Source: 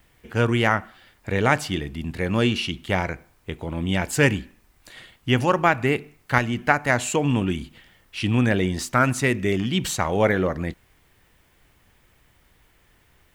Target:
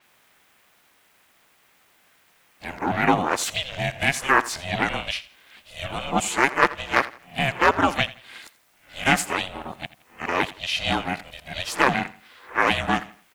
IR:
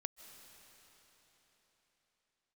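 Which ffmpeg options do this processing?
-filter_complex "[0:a]areverse,highpass=f=430:w=0.5412,highpass=f=430:w=1.3066,asoftclip=type=hard:threshold=-7.5dB,asplit=2[a][b];[b]asetrate=52444,aresample=44100,atempo=0.840896,volume=-9dB[c];[a][c]amix=inputs=2:normalize=0,acrusher=bits=10:mix=0:aa=0.000001,aeval=exprs='val(0)*sin(2*PI*270*n/s)':c=same,asplit=2[d][e];[e]aecho=0:1:84|168|252:0.126|0.0403|0.0129[f];[d][f]amix=inputs=2:normalize=0,adynamicequalizer=threshold=0.00501:dfrequency=7100:dqfactor=0.7:tfrequency=7100:tqfactor=0.7:attack=5:release=100:ratio=0.375:range=2:mode=cutabove:tftype=highshelf,volume=4.5dB"

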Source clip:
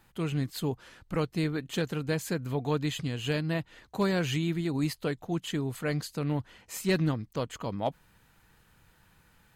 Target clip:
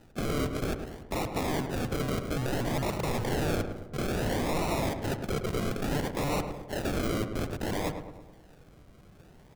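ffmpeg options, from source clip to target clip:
-filter_complex "[0:a]asettb=1/sr,asplit=3[a][b][c];[a]atrim=end=2.024[d];[b]atrim=start=2.02:end=4.22,asetpts=PTS-STARTPTS,afade=t=in:d=0.004:c=qsin,afade=t=out:st=2.196:d=0.004:c=qsin,highshelf=f=3.3k:g=-11.5[e];[c]atrim=start=4.216[f];[d][e]acrossfade=d=0.004:c1=hsin:c2=qsin[g];[g][f]acrossfade=d=0.004:c1=qsin:c2=hsin,acrusher=samples=39:mix=1:aa=0.000001:lfo=1:lforange=23.4:lforate=0.59,aeval=exprs='(mod(39.8*val(0)+1,2)-1)/39.8':c=same,asplit=2[h][i];[i]adelay=107,lowpass=f=1.7k:p=1,volume=-7dB,asplit=2[j][k];[k]adelay=107,lowpass=f=1.7k:p=1,volume=0.54,asplit=2[l][m];[m]adelay=107,lowpass=f=1.7k:p=1,volume=0.54,asplit=2[n][o];[o]adelay=107,lowpass=f=1.7k:p=1,volume=0.54,asplit=2[p][q];[q]adelay=107,lowpass=f=1.7k:p=1,volume=0.54,asplit=2[r][s];[s]adelay=107,lowpass=f=1.7k:p=1,volume=0.54,asplit=2[t][u];[u]adelay=107,lowpass=f=1.7k:p=1,volume=0.54[v];[h][j][l][n][p][r][t][v]amix=inputs=8:normalize=0,volume=7dB"

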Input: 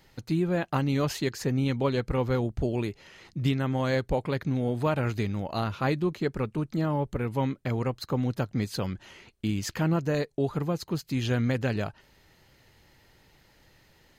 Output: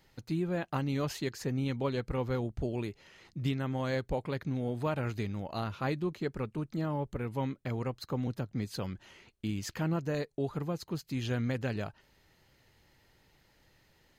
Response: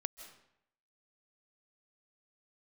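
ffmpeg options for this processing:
-filter_complex "[0:a]asettb=1/sr,asplit=3[a][b][c];[a]atrim=end=8.274[d];[b]atrim=start=8.27:end=8.71,asetpts=PTS-STARTPTS,afade=t=in:d=0.004:c=qsin,afade=t=out:st=0.436:d=0.004:c=qsin,acrossover=split=440[e][f];[f]acompressor=threshold=-40dB:ratio=2[g];[e][g]amix=inputs=2:normalize=0[h];[c]atrim=start=8.706[i];[d][h]acrossfade=d=0.004:c1=hsin:c2=qsin[j];[j][i]acrossfade=d=0.004:c1=qsin:c2=hsin,volume=-6dB"

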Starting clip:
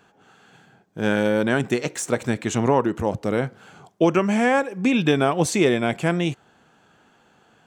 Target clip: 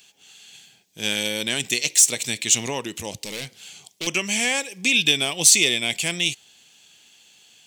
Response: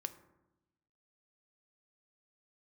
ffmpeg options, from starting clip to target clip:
-filter_complex "[0:a]asettb=1/sr,asplit=3[a][b][c];[a]atrim=end=3.184[d];[b]atrim=start=3.18:end=4.07,asetpts=PTS-STARTPTS,afade=t=in:d=0.004:c=qsin,afade=t=out:st=0.886:d=0.004:c=qsin,volume=22.5dB,asoftclip=hard,volume=-22.5dB[e];[c]atrim=start=4.066[f];[d][e]acrossfade=d=0.004:c1=hsin:c2=qsin[g];[g][f]acrossfade=d=0.004:c1=qsin:c2=hsin,aexciter=amount=9.6:drive=8.6:freq=2.2k,volume=-10.5dB"

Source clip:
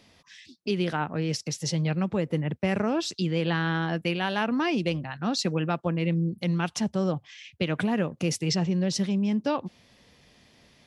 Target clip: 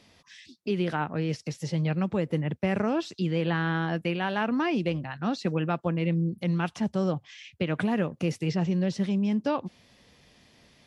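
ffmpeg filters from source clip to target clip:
-filter_complex "[0:a]acrossover=split=2700[a][b];[b]acompressor=threshold=-43dB:ratio=4:attack=1:release=60[c];[a][c]amix=inputs=2:normalize=0" -ar 32000 -c:a libmp3lame -b:a 64k

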